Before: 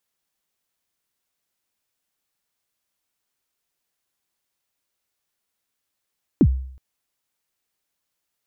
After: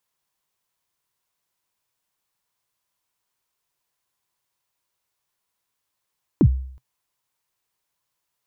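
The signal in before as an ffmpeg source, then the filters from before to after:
-f lavfi -i "aevalsrc='0.398*pow(10,-3*t/0.62)*sin(2*PI*(360*0.061/log(65/360)*(exp(log(65/360)*min(t,0.061)/0.061)-1)+65*max(t-0.061,0)))':duration=0.37:sample_rate=44100"
-af "equalizer=frequency=125:width_type=o:width=0.33:gain=6,equalizer=frequency=250:width_type=o:width=0.33:gain=-5,equalizer=frequency=1000:width_type=o:width=0.33:gain=8"

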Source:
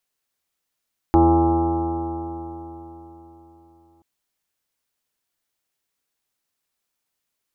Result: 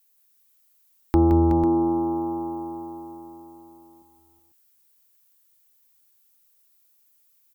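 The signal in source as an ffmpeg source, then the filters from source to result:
-f lavfi -i "aevalsrc='0.133*pow(10,-3*t/3.89)*sin(2*PI*81.53*t)+0.0376*pow(10,-3*t/3.89)*sin(2*PI*163.84*t)+0.0376*pow(10,-3*t/3.89)*sin(2*PI*247.69*t)+0.237*pow(10,-3*t/3.89)*sin(2*PI*333.83*t)+0.0282*pow(10,-3*t/3.89)*sin(2*PI*422.97*t)+0.0299*pow(10,-3*t/3.89)*sin(2*PI*515.77*t)+0.0266*pow(10,-3*t/3.89)*sin(2*PI*612.85*t)+0.0299*pow(10,-3*t/3.89)*sin(2*PI*714.78*t)+0.141*pow(10,-3*t/3.89)*sin(2*PI*822.08*t)+0.0266*pow(10,-3*t/3.89)*sin(2*PI*935.21*t)+0.0224*pow(10,-3*t/3.89)*sin(2*PI*1054.6*t)+0.0188*pow(10,-3*t/3.89)*sin(2*PI*1180.6*t)+0.015*pow(10,-3*t/3.89)*sin(2*PI*1313.53*t)':duration=2.88:sample_rate=44100"
-filter_complex "[0:a]acrossover=split=490[link_01][link_02];[link_02]acompressor=threshold=-33dB:ratio=4[link_03];[link_01][link_03]amix=inputs=2:normalize=0,aemphasis=mode=production:type=50fm,aecho=1:1:170|372|497:0.422|0.376|0.266"

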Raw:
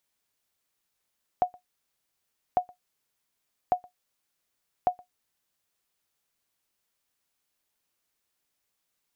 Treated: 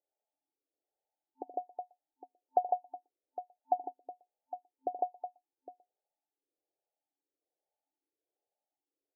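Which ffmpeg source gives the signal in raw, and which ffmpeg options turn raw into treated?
-f lavfi -i "aevalsrc='0.211*(sin(2*PI*725*mod(t,1.15))*exp(-6.91*mod(t,1.15)/0.12)+0.0473*sin(2*PI*725*max(mod(t,1.15)-0.12,0))*exp(-6.91*max(mod(t,1.15)-0.12,0)/0.12))':duration=4.6:sample_rate=44100"
-filter_complex "[0:a]afftfilt=real='re*between(b*sr/4096,260,890)':imag='im*between(b*sr/4096,260,890)':win_size=4096:overlap=0.75,aecho=1:1:76|153|368|809:0.188|0.631|0.2|0.224,asplit=2[link_01][link_02];[link_02]afreqshift=1.2[link_03];[link_01][link_03]amix=inputs=2:normalize=1"

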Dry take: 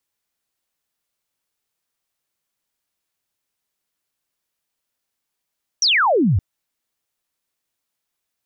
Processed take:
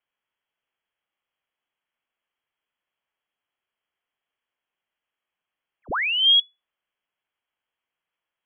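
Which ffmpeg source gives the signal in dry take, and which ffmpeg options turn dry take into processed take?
-f lavfi -i "aevalsrc='0.224*clip(t/0.002,0,1)*clip((0.57-t)/0.002,0,1)*sin(2*PI*6100*0.57/log(80/6100)*(exp(log(80/6100)*t/0.57)-1))':duration=0.57:sample_rate=44100"
-filter_complex "[0:a]equalizer=frequency=190:width_type=o:width=0.96:gain=3,acrossover=split=200[link_01][link_02];[link_02]alimiter=limit=-21dB:level=0:latency=1:release=446[link_03];[link_01][link_03]amix=inputs=2:normalize=0,lowpass=frequency=2900:width_type=q:width=0.5098,lowpass=frequency=2900:width_type=q:width=0.6013,lowpass=frequency=2900:width_type=q:width=0.9,lowpass=frequency=2900:width_type=q:width=2.563,afreqshift=-3400"

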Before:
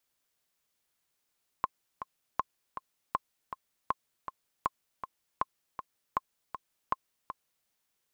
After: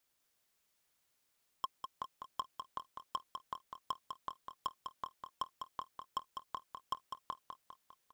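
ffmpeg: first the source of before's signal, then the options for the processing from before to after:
-f lavfi -i "aevalsrc='pow(10,(-14-10*gte(mod(t,2*60/159),60/159))/20)*sin(2*PI*1060*mod(t,60/159))*exp(-6.91*mod(t,60/159)/0.03)':duration=6.03:sample_rate=44100"
-af "asoftclip=type=hard:threshold=-29dB,aecho=1:1:201|402|603|804|1005|1206:0.473|0.246|0.128|0.0665|0.0346|0.018"

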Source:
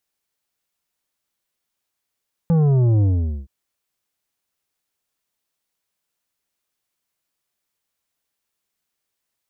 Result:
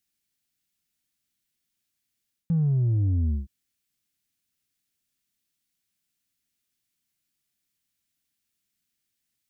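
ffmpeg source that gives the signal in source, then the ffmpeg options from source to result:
-f lavfi -i "aevalsrc='0.2*clip((0.97-t)/0.45,0,1)*tanh(2.82*sin(2*PI*170*0.97/log(65/170)*(exp(log(65/170)*t/0.97)-1)))/tanh(2.82)':duration=0.97:sample_rate=44100"
-af "equalizer=frequency=125:width_type=o:width=1:gain=3,equalizer=frequency=250:width_type=o:width=1:gain=5,equalizer=frequency=500:width_type=o:width=1:gain=-11,equalizer=frequency=1000:width_type=o:width=1:gain=-11,areverse,acompressor=threshold=-22dB:ratio=6,areverse"

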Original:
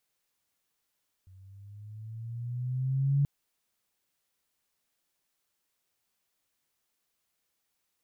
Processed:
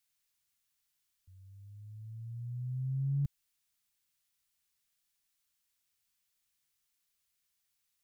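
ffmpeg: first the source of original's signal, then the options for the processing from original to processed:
-f lavfi -i "aevalsrc='pow(10,(-21+30*(t/1.98-1))/20)*sin(2*PI*92.6*1.98/(7.5*log(2)/12)*(exp(7.5*log(2)/12*t/1.98)-1))':duration=1.98:sample_rate=44100"
-filter_complex "[0:a]equalizer=frequency=470:width=0.47:gain=-14.5,acrossover=split=140|200[link_01][link_02][link_03];[link_03]aeval=exprs='clip(val(0),-1,0.00168)':channel_layout=same[link_04];[link_01][link_02][link_04]amix=inputs=3:normalize=0"

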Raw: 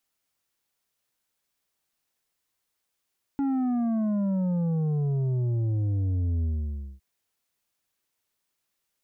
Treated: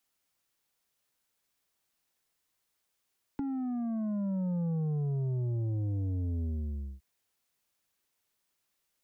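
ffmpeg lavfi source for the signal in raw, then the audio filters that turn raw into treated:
-f lavfi -i "aevalsrc='0.0631*clip((3.61-t)/0.57,0,1)*tanh(2.24*sin(2*PI*280*3.61/log(65/280)*(exp(log(65/280)*t/3.61)-1)))/tanh(2.24)':duration=3.61:sample_rate=44100"
-filter_complex "[0:a]acrossover=split=140|350[link_01][link_02][link_03];[link_01]acompressor=threshold=-35dB:ratio=4[link_04];[link_02]acompressor=threshold=-38dB:ratio=4[link_05];[link_03]acompressor=threshold=-47dB:ratio=4[link_06];[link_04][link_05][link_06]amix=inputs=3:normalize=0"

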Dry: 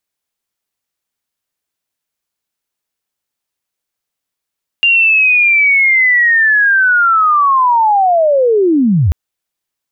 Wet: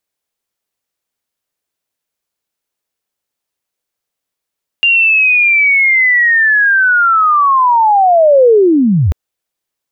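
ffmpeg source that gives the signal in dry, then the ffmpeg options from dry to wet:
-f lavfi -i "aevalsrc='pow(10,(-6.5-1*t/4.29)/20)*sin(2*PI*(2800*t-2732*t*t/(2*4.29)))':duration=4.29:sample_rate=44100"
-af "equalizer=frequency=500:width=1.3:gain=4"

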